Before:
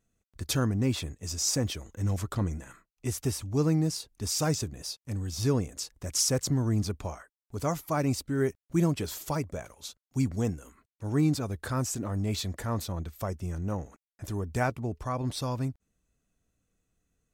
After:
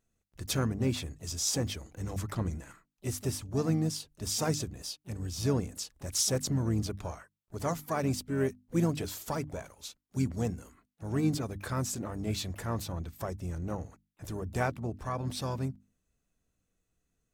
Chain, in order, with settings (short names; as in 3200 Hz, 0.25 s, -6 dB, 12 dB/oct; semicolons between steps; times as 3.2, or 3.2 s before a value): harmoniser -7 st -15 dB, +7 st -15 dB; notches 50/100/150/200/250/300 Hz; gain -2.5 dB